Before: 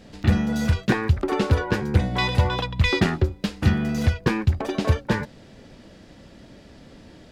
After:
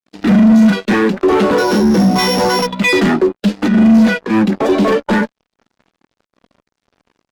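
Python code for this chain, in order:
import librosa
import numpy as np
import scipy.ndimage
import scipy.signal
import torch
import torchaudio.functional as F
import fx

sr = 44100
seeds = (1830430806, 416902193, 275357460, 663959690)

y = fx.sample_sort(x, sr, block=8, at=(1.58, 2.67))
y = scipy.signal.sosfilt(scipy.signal.butter(16, 180.0, 'highpass', fs=sr, output='sos'), y)
y = fx.over_compress(y, sr, threshold_db=-26.0, ratio=-0.5, at=(3.65, 4.69))
y = fx.fuzz(y, sr, gain_db=34.0, gate_db=-42.0)
y = fx.spectral_expand(y, sr, expansion=1.5)
y = y * 10.0 ** (6.5 / 20.0)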